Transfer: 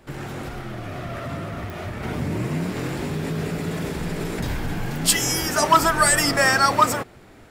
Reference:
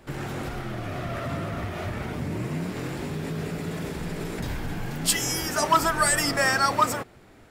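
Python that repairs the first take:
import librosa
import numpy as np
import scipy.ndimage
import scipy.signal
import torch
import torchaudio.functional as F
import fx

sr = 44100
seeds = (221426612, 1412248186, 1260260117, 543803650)

y = fx.fix_declick_ar(x, sr, threshold=10.0)
y = fx.gain(y, sr, db=fx.steps((0.0, 0.0), (2.03, -4.5)))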